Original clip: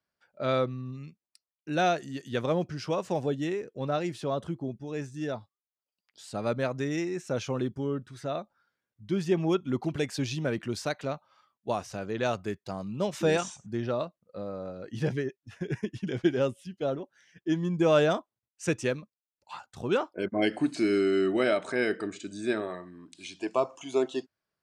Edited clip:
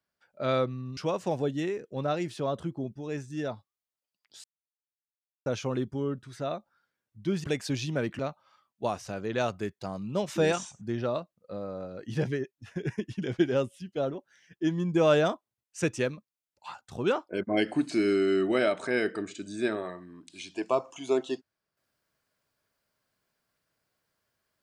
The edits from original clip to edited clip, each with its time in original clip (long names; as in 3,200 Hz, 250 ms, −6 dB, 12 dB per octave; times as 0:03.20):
0:00.97–0:02.81: remove
0:06.28–0:07.30: silence
0:09.28–0:09.93: remove
0:10.68–0:11.04: remove